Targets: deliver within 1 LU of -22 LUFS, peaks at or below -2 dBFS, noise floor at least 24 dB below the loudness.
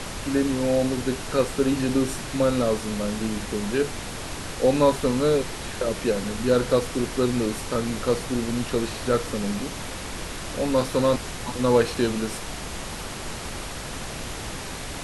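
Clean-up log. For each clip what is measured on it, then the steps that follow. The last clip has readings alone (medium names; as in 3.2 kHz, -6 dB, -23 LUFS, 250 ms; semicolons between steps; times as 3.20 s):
noise floor -34 dBFS; noise floor target -50 dBFS; loudness -25.5 LUFS; peak level -7.5 dBFS; loudness target -22.0 LUFS
-> noise print and reduce 16 dB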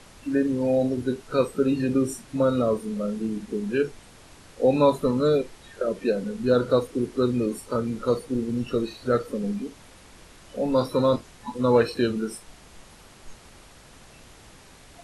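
noise floor -50 dBFS; loudness -25.0 LUFS; peak level -8.0 dBFS; loudness target -22.0 LUFS
-> trim +3 dB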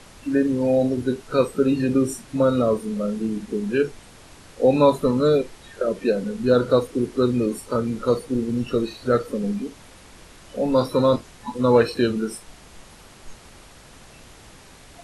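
loudness -22.0 LUFS; peak level -5.0 dBFS; noise floor -47 dBFS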